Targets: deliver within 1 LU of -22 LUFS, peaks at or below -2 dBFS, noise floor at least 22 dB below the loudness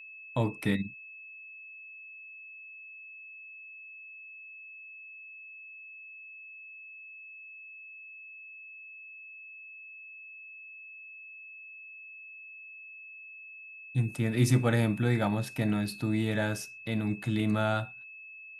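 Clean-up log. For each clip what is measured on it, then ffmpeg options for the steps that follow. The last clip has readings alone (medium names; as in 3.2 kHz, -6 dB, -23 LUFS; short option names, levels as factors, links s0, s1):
steady tone 2.6 kHz; tone level -45 dBFS; loudness -30.0 LUFS; peak level -13.0 dBFS; loudness target -22.0 LUFS
-> -af "bandreject=f=2600:w=30"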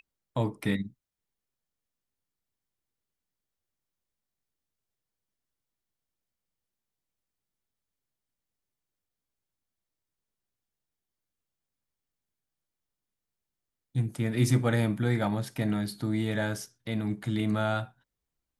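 steady tone not found; loudness -30.0 LUFS; peak level -13.0 dBFS; loudness target -22.0 LUFS
-> -af "volume=2.51"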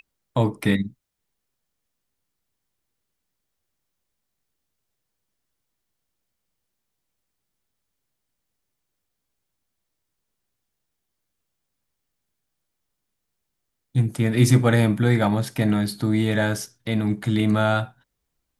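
loudness -22.0 LUFS; peak level -5.0 dBFS; noise floor -80 dBFS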